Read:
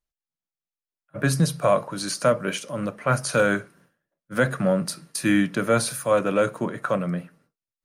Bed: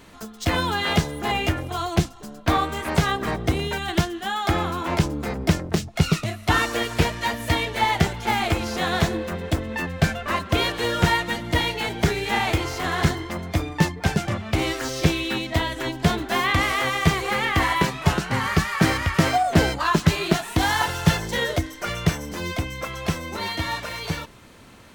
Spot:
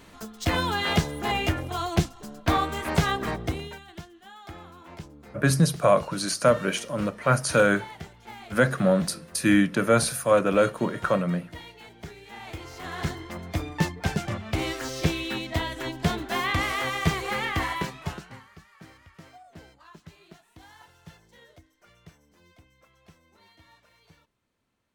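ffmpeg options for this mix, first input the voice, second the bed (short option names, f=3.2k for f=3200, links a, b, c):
-filter_complex "[0:a]adelay=4200,volume=0.5dB[a];[1:a]volume=13dB,afade=t=out:st=3.19:d=0.66:silence=0.125893,afade=t=in:st=12.36:d=1.32:silence=0.16788,afade=t=out:st=17.39:d=1.07:silence=0.0562341[b];[a][b]amix=inputs=2:normalize=0"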